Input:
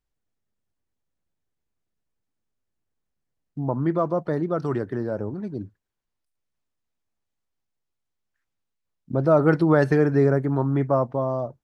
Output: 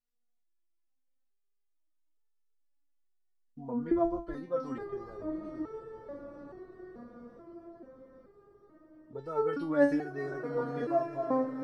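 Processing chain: 3.91–4.34 s: octave divider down 2 oct, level +1 dB; echo that smears into a reverb 1049 ms, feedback 53%, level -8 dB; resonator arpeggio 2.3 Hz 240–440 Hz; trim +4.5 dB

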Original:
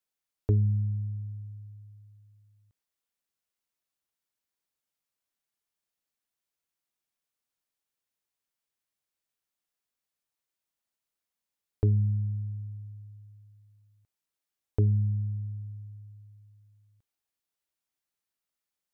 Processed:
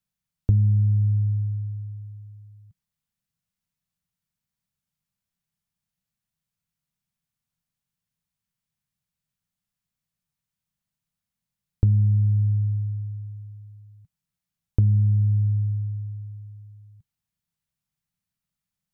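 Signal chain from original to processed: resonant low shelf 240 Hz +12.5 dB, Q 3; compression 4:1, threshold -18 dBFS, peak gain reduction 11 dB

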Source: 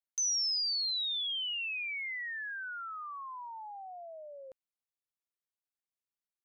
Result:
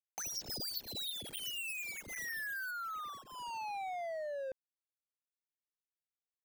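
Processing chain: median filter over 41 samples; 0.48–2.71 s: treble shelf 6.2 kHz +9.5 dB; compression 3:1, threshold -54 dBFS, peak gain reduction 12.5 dB; trim +13.5 dB

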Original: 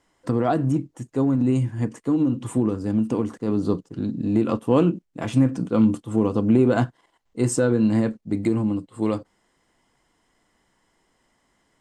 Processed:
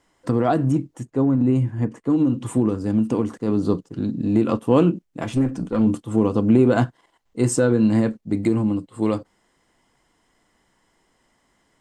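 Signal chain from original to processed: 1.05–2.10 s: treble shelf 3.1 kHz -11.5 dB; 5.24–5.87 s: valve stage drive 12 dB, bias 0.55; trim +2 dB

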